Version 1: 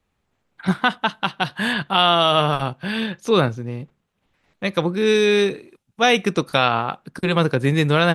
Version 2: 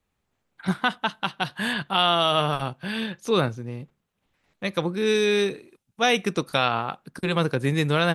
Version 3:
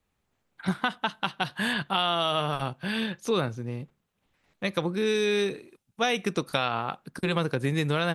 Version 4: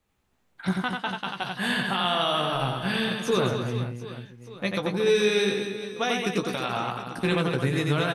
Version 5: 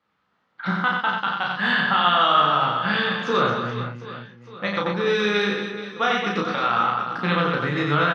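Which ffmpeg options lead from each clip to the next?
ffmpeg -i in.wav -af "highshelf=frequency=6500:gain=5.5,volume=-5dB" out.wav
ffmpeg -i in.wav -af "acompressor=threshold=-23dB:ratio=3" out.wav
ffmpeg -i in.wav -filter_complex "[0:a]alimiter=limit=-17dB:level=0:latency=1:release=408,asplit=2[link_01][link_02];[link_02]adelay=16,volume=-8dB[link_03];[link_01][link_03]amix=inputs=2:normalize=0,aecho=1:1:90|225|427.5|731.2|1187:0.631|0.398|0.251|0.158|0.1,volume=1.5dB" out.wav
ffmpeg -i in.wav -filter_complex "[0:a]highpass=210,equalizer=frequency=260:width_type=q:width=4:gain=-6,equalizer=frequency=390:width_type=q:width=4:gain=-9,equalizer=frequency=660:width_type=q:width=4:gain=-5,equalizer=frequency=1300:width_type=q:width=4:gain=7,equalizer=frequency=2500:width_type=q:width=4:gain=-6,equalizer=frequency=3800:width_type=q:width=4:gain=-4,lowpass=frequency=4300:width=0.5412,lowpass=frequency=4300:width=1.3066,asplit=2[link_01][link_02];[link_02]adelay=34,volume=-3dB[link_03];[link_01][link_03]amix=inputs=2:normalize=0,volume=5dB" out.wav

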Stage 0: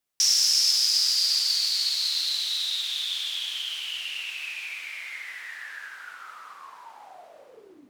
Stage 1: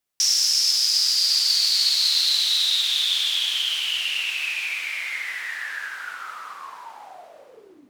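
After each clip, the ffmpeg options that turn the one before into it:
ffmpeg -i in.wav -af "dynaudnorm=framelen=610:gausssize=5:maxgain=7dB,volume=1dB" out.wav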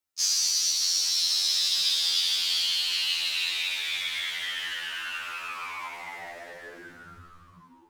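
ffmpeg -i in.wav -af "aeval=exprs='val(0)*sin(2*PI*620*n/s)':channel_layout=same,afftfilt=real='re*2*eq(mod(b,4),0)':imag='im*2*eq(mod(b,4),0)':win_size=2048:overlap=0.75" out.wav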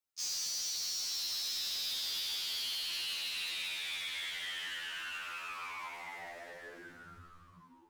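ffmpeg -i in.wav -af "asoftclip=type=tanh:threshold=-29dB,volume=-5.5dB" out.wav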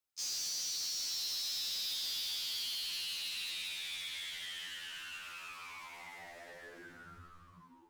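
ffmpeg -i in.wav -filter_complex "[0:a]acrossover=split=260|3000[link_01][link_02][link_03];[link_02]acompressor=threshold=-49dB:ratio=6[link_04];[link_01][link_04][link_03]amix=inputs=3:normalize=0,aeval=exprs='0.02*(abs(mod(val(0)/0.02+3,4)-2)-1)':channel_layout=same" out.wav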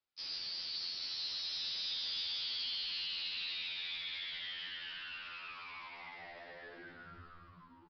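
ffmpeg -i in.wav -af "aecho=1:1:292|584|876|1168:0.251|0.108|0.0464|0.02,aresample=11025,aresample=44100" out.wav

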